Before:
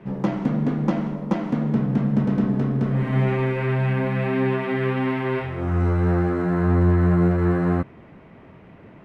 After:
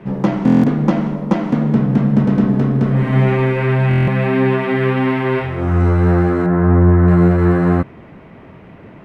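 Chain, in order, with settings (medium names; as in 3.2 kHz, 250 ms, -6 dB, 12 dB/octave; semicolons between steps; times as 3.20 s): 6.46–7.08 s: low-pass 1.8 kHz 12 dB/octave; buffer glitch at 0.45/3.89 s, samples 1024, times 7; trim +7 dB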